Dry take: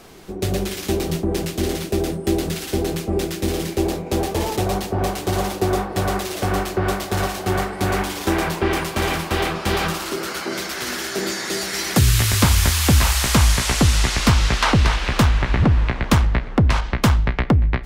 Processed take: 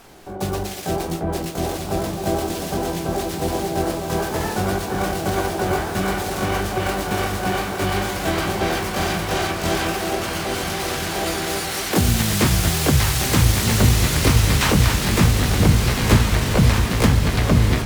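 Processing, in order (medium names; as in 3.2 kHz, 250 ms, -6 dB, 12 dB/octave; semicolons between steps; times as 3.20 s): echo that smears into a reverb 1588 ms, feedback 51%, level -3.5 dB; harmony voices +7 st -8 dB, +12 st -1 dB; trim -5 dB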